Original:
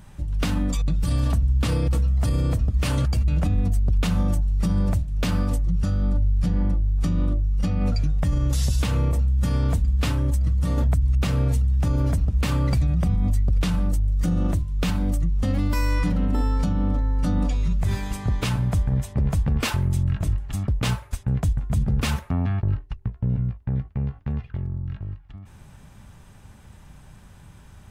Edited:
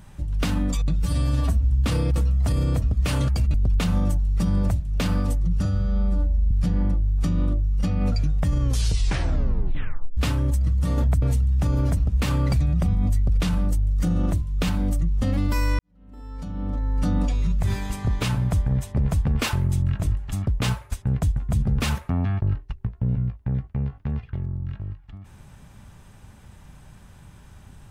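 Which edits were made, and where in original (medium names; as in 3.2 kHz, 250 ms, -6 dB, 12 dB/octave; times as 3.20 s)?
1.02–1.48 s: stretch 1.5×
3.31–3.77 s: delete
5.88–6.31 s: stretch 2×
8.40 s: tape stop 1.57 s
11.02–11.43 s: delete
16.00–17.21 s: fade in quadratic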